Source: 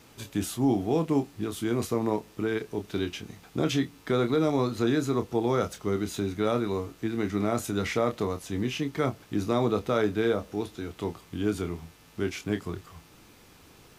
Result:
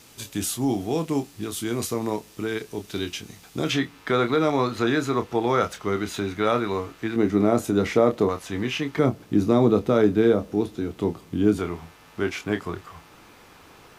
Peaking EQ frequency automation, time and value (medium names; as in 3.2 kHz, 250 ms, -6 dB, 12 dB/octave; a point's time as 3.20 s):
peaking EQ +9 dB 2.9 oct
9.3 kHz
from 3.69 s 1.6 kHz
from 7.16 s 370 Hz
from 8.29 s 1.4 kHz
from 8.99 s 240 Hz
from 11.59 s 1.1 kHz